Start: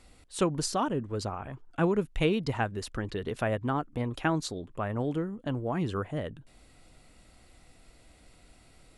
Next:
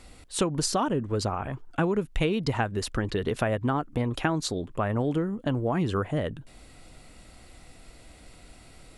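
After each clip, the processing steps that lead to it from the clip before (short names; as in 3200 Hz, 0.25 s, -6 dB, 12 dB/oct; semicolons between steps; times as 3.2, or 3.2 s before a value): compressor 5:1, threshold -29 dBFS, peak gain reduction 8.5 dB; gain +7 dB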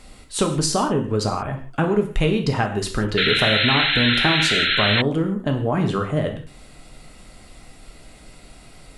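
non-linear reverb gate 0.2 s falling, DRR 3.5 dB; painted sound noise, 3.17–5.02, 1300–4200 Hz -24 dBFS; gain +4 dB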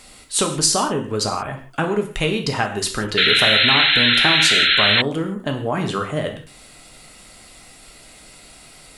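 tilt +2 dB/oct; gain +1.5 dB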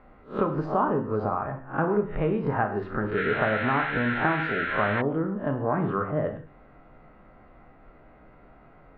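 spectral swells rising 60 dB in 0.30 s; LPF 1500 Hz 24 dB/oct; gain -4 dB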